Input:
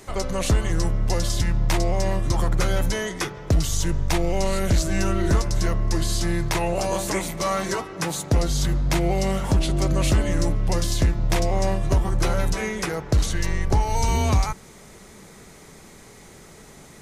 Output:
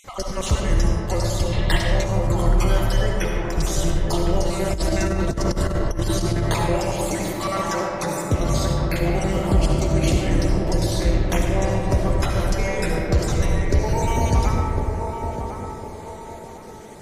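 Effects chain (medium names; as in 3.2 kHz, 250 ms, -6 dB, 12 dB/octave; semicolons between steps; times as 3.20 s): random holes in the spectrogram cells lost 38%; band-passed feedback delay 1055 ms, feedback 44%, band-pass 510 Hz, level -4 dB; algorithmic reverb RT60 3.3 s, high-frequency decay 0.35×, pre-delay 30 ms, DRR -0.5 dB; 1.53–2.04 s: time-frequency box 1.6–4.3 kHz +9 dB; 4.65–6.76 s: compressor with a negative ratio -20 dBFS, ratio -0.5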